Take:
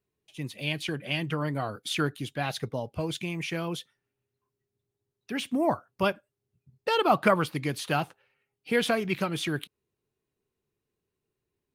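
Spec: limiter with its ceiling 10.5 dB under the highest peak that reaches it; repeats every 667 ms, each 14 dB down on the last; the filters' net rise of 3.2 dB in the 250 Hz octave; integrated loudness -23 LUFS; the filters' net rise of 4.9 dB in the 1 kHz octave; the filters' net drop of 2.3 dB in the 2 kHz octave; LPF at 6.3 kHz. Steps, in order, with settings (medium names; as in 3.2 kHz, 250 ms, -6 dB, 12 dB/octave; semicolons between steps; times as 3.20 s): low-pass 6.3 kHz; peaking EQ 250 Hz +4 dB; peaking EQ 1 kHz +8 dB; peaking EQ 2 kHz -6.5 dB; peak limiter -16.5 dBFS; feedback delay 667 ms, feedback 20%, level -14 dB; trim +7 dB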